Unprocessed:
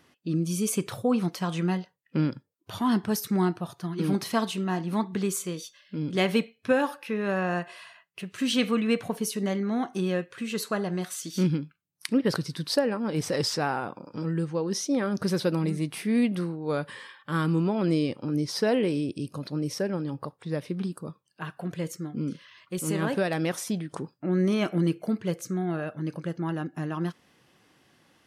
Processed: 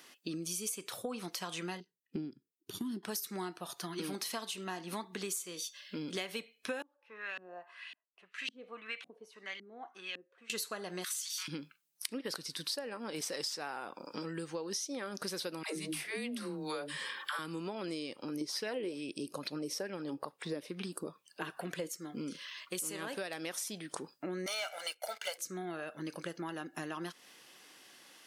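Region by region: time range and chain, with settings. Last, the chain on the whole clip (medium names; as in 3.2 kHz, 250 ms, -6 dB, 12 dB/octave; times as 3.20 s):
1.80–3.03 s: FFT filter 400 Hz 0 dB, 580 Hz -27 dB, 1.6 kHz -19 dB, 10 kHz -11 dB + transient shaper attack +5 dB, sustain -4 dB
6.82–10.50 s: pre-emphasis filter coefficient 0.97 + LFO low-pass saw up 1.8 Hz 250–3200 Hz
11.04–11.48 s: brick-wall FIR high-pass 930 Hz + level flattener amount 50%
15.63–17.39 s: phase dispersion lows, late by 146 ms, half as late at 380 Hz + three bands compressed up and down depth 70%
18.41–21.89 s: bass shelf 460 Hz +5 dB + sweeping bell 2.3 Hz 310–2700 Hz +10 dB
24.46–25.38 s: high-pass 590 Hz 24 dB/octave + comb 1.4 ms, depth 98% + waveshaping leveller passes 2
whole clip: high-pass 300 Hz 12 dB/octave; treble shelf 2.2 kHz +11.5 dB; compression 6:1, threshold -37 dBFS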